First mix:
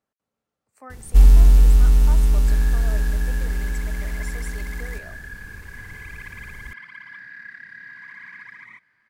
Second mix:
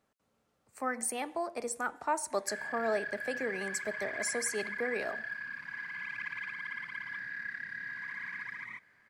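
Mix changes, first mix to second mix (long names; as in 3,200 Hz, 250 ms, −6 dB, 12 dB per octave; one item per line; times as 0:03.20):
speech +8.0 dB
first sound: muted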